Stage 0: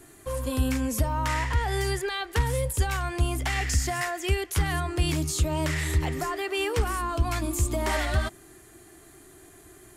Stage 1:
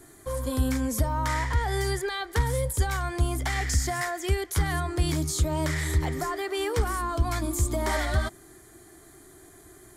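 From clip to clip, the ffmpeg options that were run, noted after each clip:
-af "equalizer=f=2.7k:w=7.3:g=-14"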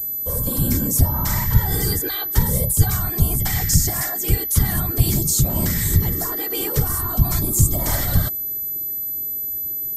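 -af "afftfilt=real='hypot(re,im)*cos(2*PI*random(0))':imag='hypot(re,im)*sin(2*PI*random(1))':win_size=512:overlap=0.75,bass=f=250:g=10,treble=f=4k:g=14,aeval=exprs='val(0)+0.0398*sin(2*PI*12000*n/s)':c=same,volume=4.5dB"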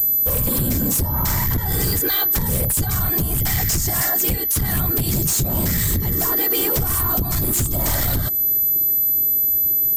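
-af "acompressor=threshold=-24dB:ratio=6,aeval=exprs='0.168*sin(PI/2*2.24*val(0)/0.168)':c=same"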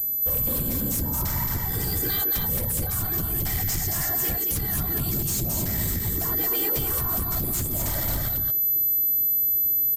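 -af "aecho=1:1:222:0.668,volume=-8.5dB"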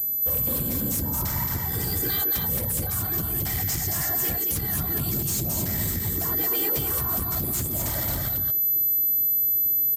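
-af "highpass=56"

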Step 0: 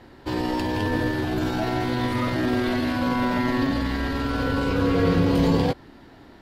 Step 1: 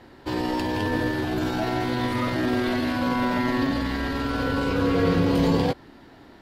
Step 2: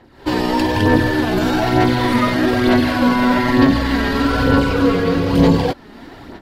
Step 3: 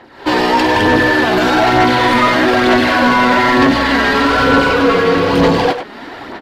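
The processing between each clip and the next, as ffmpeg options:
-af "lowshelf=f=130:g=-4"
-af "dynaudnorm=f=120:g=3:m=15dB,aphaser=in_gain=1:out_gain=1:delay=4.9:decay=0.43:speed=1.1:type=sinusoidal,volume=-4dB"
-filter_complex "[0:a]asplit=2[a][b];[b]highpass=f=720:p=1,volume=19dB,asoftclip=type=tanh:threshold=-1dB[c];[a][c]amix=inputs=2:normalize=0,lowpass=f=3.1k:p=1,volume=-6dB,asplit=2[d][e];[e]adelay=100,highpass=300,lowpass=3.4k,asoftclip=type=hard:threshold=-11dB,volume=-7dB[f];[d][f]amix=inputs=2:normalize=0,volume=-1dB"

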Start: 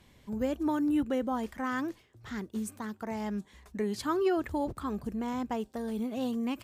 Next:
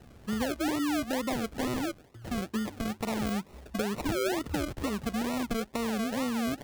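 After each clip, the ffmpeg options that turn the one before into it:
-af "acrusher=samples=38:mix=1:aa=0.000001:lfo=1:lforange=22.8:lforate=2.2,acompressor=threshold=-36dB:ratio=5,volume=7.5dB"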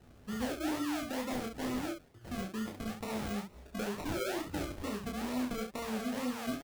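-af "aecho=1:1:20|32|68:0.596|0.596|0.501,volume=-8dB"

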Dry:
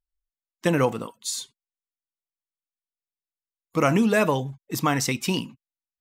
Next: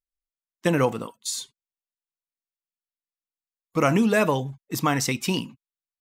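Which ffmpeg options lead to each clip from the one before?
-af "agate=range=-9dB:threshold=-43dB:ratio=16:detection=peak"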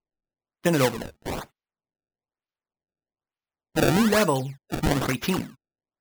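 -af "acrusher=samples=24:mix=1:aa=0.000001:lfo=1:lforange=38.4:lforate=1.1"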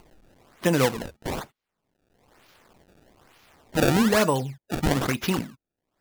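-af "acompressor=mode=upward:threshold=-27dB:ratio=2.5"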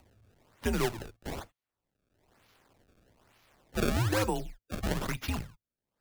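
-af "afreqshift=-110,volume=-8dB"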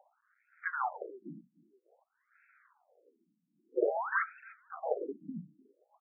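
-af "highpass=150,equalizer=f=260:t=q:w=4:g=-8,equalizer=f=500:t=q:w=4:g=5,equalizer=f=800:t=q:w=4:g=3,equalizer=f=1.5k:t=q:w=4:g=4,lowpass=f=2.4k:w=0.5412,lowpass=f=2.4k:w=1.3066,aecho=1:1:301|602|903:0.0794|0.0286|0.0103,afftfilt=real='re*between(b*sr/1024,210*pow(1900/210,0.5+0.5*sin(2*PI*0.51*pts/sr))/1.41,210*pow(1900/210,0.5+0.5*sin(2*PI*0.51*pts/sr))*1.41)':imag='im*between(b*sr/1024,210*pow(1900/210,0.5+0.5*sin(2*PI*0.51*pts/sr))/1.41,210*pow(1900/210,0.5+0.5*sin(2*PI*0.51*pts/sr))*1.41)':win_size=1024:overlap=0.75,volume=3.5dB"

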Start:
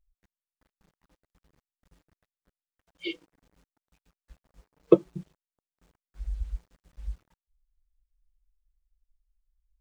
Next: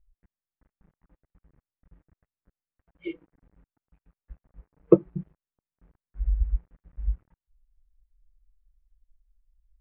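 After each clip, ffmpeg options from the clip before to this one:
-af "lowpass=f=2.1k:w=0.5412,lowpass=f=2.1k:w=1.3066,lowshelf=f=260:g=11,volume=-2.5dB"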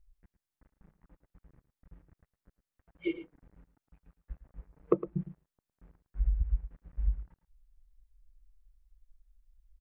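-af "acompressor=threshold=-25dB:ratio=8,aecho=1:1:109:0.211,volume=2dB"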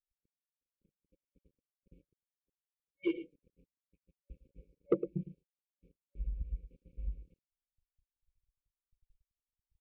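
-filter_complex "[0:a]agate=range=-34dB:threshold=-55dB:ratio=16:detection=peak,afftfilt=real='re*(1-between(b*sr/4096,560,2200))':imag='im*(1-between(b*sr/4096,560,2200))':win_size=4096:overlap=0.75,asplit=2[a][b];[b]highpass=f=720:p=1,volume=18dB,asoftclip=type=tanh:threshold=-10.5dB[c];[a][c]amix=inputs=2:normalize=0,lowpass=f=1.1k:p=1,volume=-6dB,volume=-4.5dB"

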